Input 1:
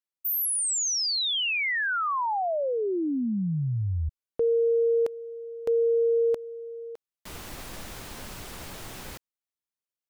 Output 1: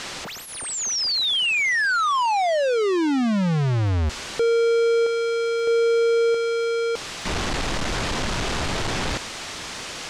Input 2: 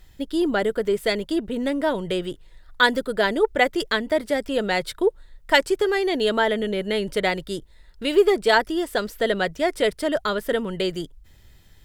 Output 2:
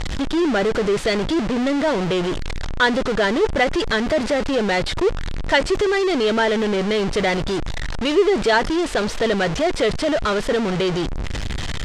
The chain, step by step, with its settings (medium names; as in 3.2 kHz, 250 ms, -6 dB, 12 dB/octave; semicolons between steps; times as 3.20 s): jump at every zero crossing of -16 dBFS; Bessel low-pass 5.2 kHz, order 4; crackle 12 per s -36 dBFS; trim -2 dB